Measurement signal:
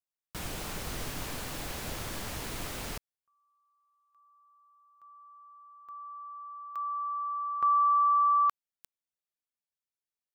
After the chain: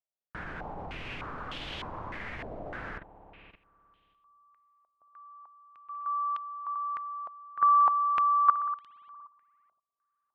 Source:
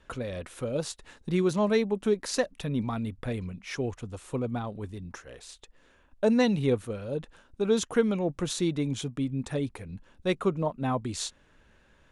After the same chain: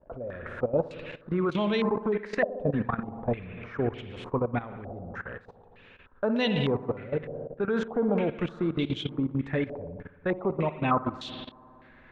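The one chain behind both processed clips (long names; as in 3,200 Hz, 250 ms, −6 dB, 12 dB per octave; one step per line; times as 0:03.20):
spring reverb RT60 2.1 s, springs 58 ms, chirp 65 ms, DRR 7 dB
output level in coarse steps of 15 dB
low-pass on a step sequencer 3.3 Hz 650–3,200 Hz
level +4 dB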